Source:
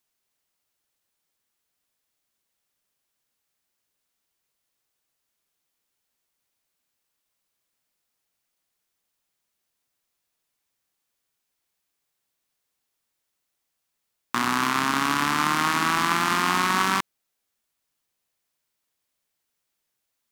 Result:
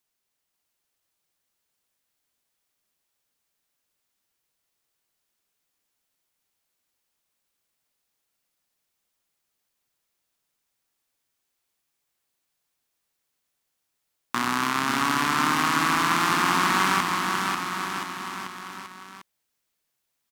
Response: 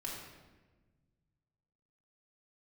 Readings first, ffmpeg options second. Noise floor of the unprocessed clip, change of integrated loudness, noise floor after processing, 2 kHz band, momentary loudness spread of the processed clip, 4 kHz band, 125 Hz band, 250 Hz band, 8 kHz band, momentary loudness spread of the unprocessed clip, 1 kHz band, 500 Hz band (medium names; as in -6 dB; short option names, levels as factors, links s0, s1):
-80 dBFS, -1.0 dB, -79 dBFS, +1.0 dB, 14 LU, +0.5 dB, +0.5 dB, +0.5 dB, +0.5 dB, 6 LU, +0.5 dB, +0.5 dB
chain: -af "aecho=1:1:540|1026|1463|1857|2211:0.631|0.398|0.251|0.158|0.1,volume=0.841"